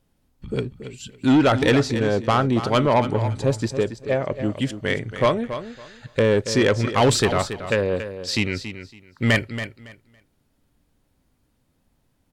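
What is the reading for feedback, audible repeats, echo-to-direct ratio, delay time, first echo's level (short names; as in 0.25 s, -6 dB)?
20%, 2, -11.0 dB, 0.279 s, -11.0 dB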